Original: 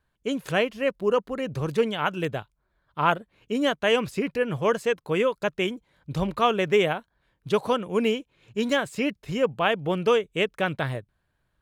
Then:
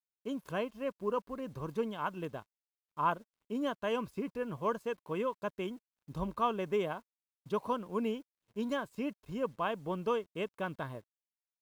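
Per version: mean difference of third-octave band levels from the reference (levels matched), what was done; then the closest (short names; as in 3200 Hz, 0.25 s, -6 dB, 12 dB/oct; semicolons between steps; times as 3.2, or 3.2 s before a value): 3.0 dB: graphic EQ 125/250/500/1000/2000/4000/8000 Hz -8/+7/-8/+5/-11/-5/-9 dB; requantised 10-bit, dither none; comb 1.9 ms, depth 39%; crossover distortion -55.5 dBFS; gain -8 dB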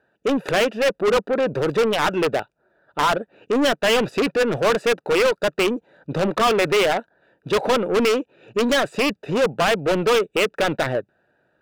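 6.5 dB: Wiener smoothing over 41 samples; HPF 430 Hz 6 dB/oct; limiter -15.5 dBFS, peak gain reduction 8.5 dB; overdrive pedal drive 29 dB, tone 6000 Hz, clips at -15.5 dBFS; gain +4.5 dB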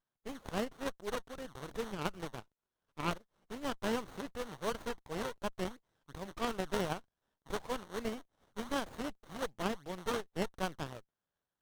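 9.0 dB: high shelf 7000 Hz -4.5 dB; in parallel at -10.5 dB: decimation with a swept rate 27×, swing 160% 2.7 Hz; on the sum: band-pass 7600 Hz, Q 0.71; running maximum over 17 samples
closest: first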